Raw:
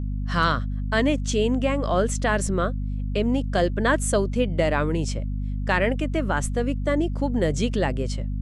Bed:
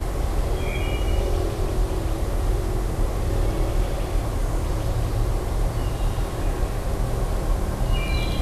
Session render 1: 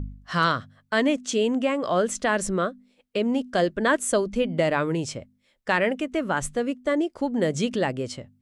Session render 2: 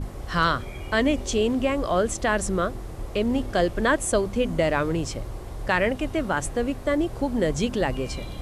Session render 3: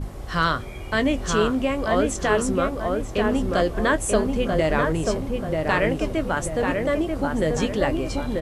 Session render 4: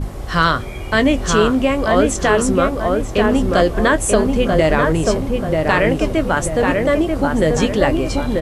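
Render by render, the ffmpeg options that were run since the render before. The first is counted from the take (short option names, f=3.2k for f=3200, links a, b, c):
-af "bandreject=f=50:t=h:w=4,bandreject=f=100:t=h:w=4,bandreject=f=150:t=h:w=4,bandreject=f=200:t=h:w=4,bandreject=f=250:t=h:w=4"
-filter_complex "[1:a]volume=-11dB[a];[0:a][a]amix=inputs=2:normalize=0"
-filter_complex "[0:a]asplit=2[a][b];[b]adelay=19,volume=-12.5dB[c];[a][c]amix=inputs=2:normalize=0,asplit=2[d][e];[e]adelay=937,lowpass=f=1.9k:p=1,volume=-3dB,asplit=2[f][g];[g]adelay=937,lowpass=f=1.9k:p=1,volume=0.46,asplit=2[h][i];[i]adelay=937,lowpass=f=1.9k:p=1,volume=0.46,asplit=2[j][k];[k]adelay=937,lowpass=f=1.9k:p=1,volume=0.46,asplit=2[l][m];[m]adelay=937,lowpass=f=1.9k:p=1,volume=0.46,asplit=2[n][o];[o]adelay=937,lowpass=f=1.9k:p=1,volume=0.46[p];[f][h][j][l][n][p]amix=inputs=6:normalize=0[q];[d][q]amix=inputs=2:normalize=0"
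-af "volume=7dB,alimiter=limit=-3dB:level=0:latency=1"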